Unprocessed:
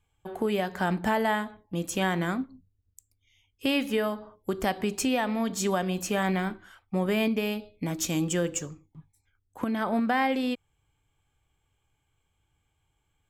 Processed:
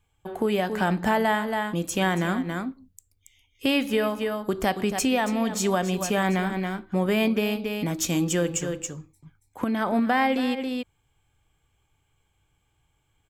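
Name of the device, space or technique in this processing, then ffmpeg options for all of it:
ducked delay: -filter_complex "[0:a]asplit=3[link_01][link_02][link_03];[link_02]adelay=278,volume=-4dB[link_04];[link_03]apad=whole_len=598537[link_05];[link_04][link_05]sidechaincompress=threshold=-37dB:ratio=10:attack=33:release=108[link_06];[link_01][link_06]amix=inputs=2:normalize=0,volume=3dB"

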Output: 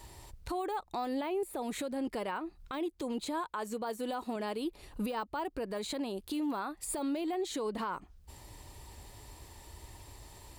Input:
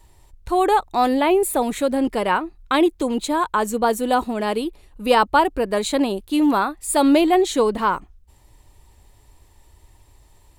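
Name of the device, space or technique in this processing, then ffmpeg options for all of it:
broadcast voice chain: -filter_complex "[0:a]asettb=1/sr,asplit=3[link_01][link_02][link_03];[link_01]atrim=end=3.464[link_04];[link_02]atrim=start=3.46:end=4.36,asetpts=PTS-STARTPTS,afade=type=in:duration=0.004:curve=qsin,afade=type=out:start_time=0.896:duration=0.004:curve=qsin,lowshelf=frequency=240:gain=-7.5[link_05];[link_03]atrim=start=4.356[link_06];[link_04][link_05]acrossfade=duration=0.004:curve1=hsin:curve2=qsin[link_07];[link_07][link_06]acrossfade=duration=0.004:curve1=qsin:curve2=hsin,highpass=frequency=77:poles=1,deesser=0.6,acompressor=threshold=-35dB:ratio=4,equalizer=frequency=4700:width_type=o:width=0.32:gain=4,alimiter=level_in=8.5dB:limit=-24dB:level=0:latency=1:release=141,volume=-8.5dB,volume=5dB"

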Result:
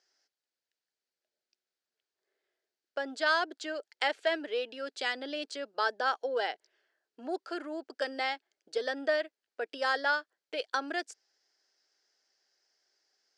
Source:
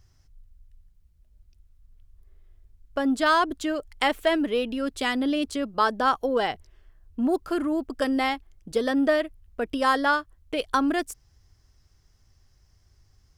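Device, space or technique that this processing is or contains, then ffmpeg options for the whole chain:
phone speaker on a table: -af "highpass=frequency=400:width=0.5412,highpass=frequency=400:width=1.3066,equalizer=frequency=1100:width_type=q:width=4:gain=-9,equalizer=frequency=1600:width_type=q:width=4:gain=5,equalizer=frequency=4600:width_type=q:width=4:gain=6,lowpass=frequency=7400:width=0.5412,lowpass=frequency=7400:width=1.3066,volume=-6dB"

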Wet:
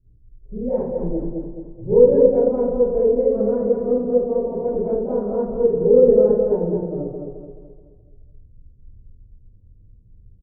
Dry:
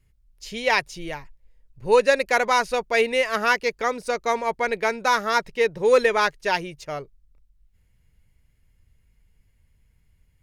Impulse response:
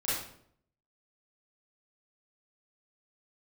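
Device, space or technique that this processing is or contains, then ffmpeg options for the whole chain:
next room: -filter_complex "[0:a]lowpass=frequency=410:width=0.5412,lowpass=frequency=410:width=1.3066[link_01];[1:a]atrim=start_sample=2205[link_02];[link_01][link_02]afir=irnorm=-1:irlink=0,asplit=2[link_03][link_04];[link_04]adelay=214,lowpass=frequency=3000:poles=1,volume=-4dB,asplit=2[link_05][link_06];[link_06]adelay=214,lowpass=frequency=3000:poles=1,volume=0.45,asplit=2[link_07][link_08];[link_08]adelay=214,lowpass=frequency=3000:poles=1,volume=0.45,asplit=2[link_09][link_10];[link_10]adelay=214,lowpass=frequency=3000:poles=1,volume=0.45,asplit=2[link_11][link_12];[link_12]adelay=214,lowpass=frequency=3000:poles=1,volume=0.45,asplit=2[link_13][link_14];[link_14]adelay=214,lowpass=frequency=3000:poles=1,volume=0.45[link_15];[link_03][link_05][link_07][link_09][link_11][link_13][link_15]amix=inputs=7:normalize=0,volume=4.5dB"

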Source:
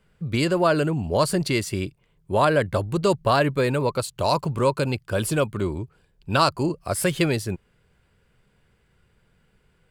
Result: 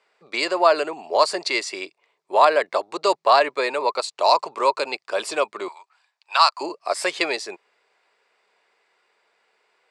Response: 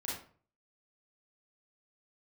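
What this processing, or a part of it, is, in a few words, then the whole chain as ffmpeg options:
phone speaker on a table: -filter_complex "[0:a]highpass=frequency=500:width=0.5412,highpass=frequency=500:width=1.3066,equalizer=frequency=520:width_type=q:width=4:gain=-7,equalizer=frequency=1500:width_type=q:width=4:gain=-8,equalizer=frequency=3100:width_type=q:width=4:gain=-8,equalizer=frequency=6300:width_type=q:width=4:gain=-4,lowpass=frequency=6800:width=0.5412,lowpass=frequency=6800:width=1.3066,asettb=1/sr,asplit=3[link_01][link_02][link_03];[link_01]atrim=end=5.684[link_04];[link_02]atrim=start=5.68:end=6.61,asetpts=PTS-STARTPTS,afade=type=in:duration=0.004:curve=qsin,afade=type=out:start_time=0.926:duration=0.004:curve=qsin,highpass=frequency=850:width=0.5412,highpass=frequency=850:width=1.3066[link_05];[link_03]atrim=start=6.606[link_06];[link_04][link_05]acrossfade=duration=0.004:curve1=hsin:curve2=qsin[link_07];[link_07][link_06]acrossfade=duration=0.004:curve1=qsin:curve2=hsin,volume=7.5dB"

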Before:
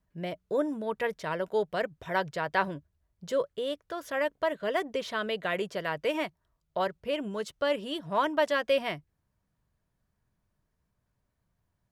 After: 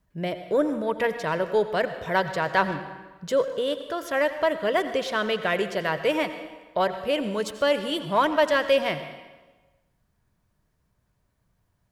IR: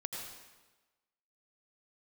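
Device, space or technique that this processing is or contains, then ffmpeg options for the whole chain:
saturated reverb return: -filter_complex "[0:a]asplit=2[link_01][link_02];[1:a]atrim=start_sample=2205[link_03];[link_02][link_03]afir=irnorm=-1:irlink=0,asoftclip=type=tanh:threshold=-25dB,volume=-4dB[link_04];[link_01][link_04]amix=inputs=2:normalize=0,asettb=1/sr,asplit=3[link_05][link_06][link_07];[link_05]atrim=end=6.974[link_08];[link_06]atrim=start=6.97:end=8.25,asetpts=PTS-STARTPTS,afade=type=in:duration=0.004:curve=qsin,afade=type=out:start_time=1.276:duration=0.004:curve=qsin,highshelf=frequency=6000:gain=4.5[link_09];[link_07]atrim=start=8.246[link_10];[link_08][link_09]acrossfade=duration=0.004:curve1=hsin:curve2=qsin[link_11];[link_11][link_10]acrossfade=duration=0.004:curve1=qsin:curve2=hsin,volume=3dB"

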